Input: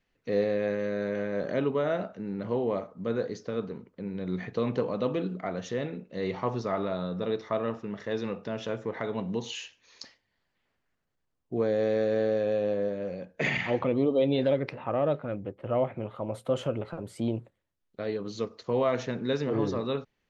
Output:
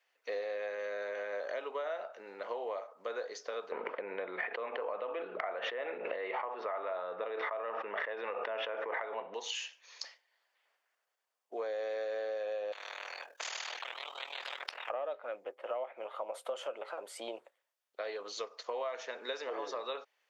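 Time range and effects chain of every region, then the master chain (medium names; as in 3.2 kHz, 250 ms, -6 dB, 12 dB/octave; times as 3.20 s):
3.72–9.34 s: low-pass 2.6 kHz 24 dB/octave + tremolo 5.5 Hz, depth 77% + level flattener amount 100%
12.72–14.90 s: ring modulator 20 Hz + spectrum-flattening compressor 10:1
whole clip: high-pass 560 Hz 24 dB/octave; band-stop 4 kHz, Q 21; compression, threshold -38 dBFS; trim +3 dB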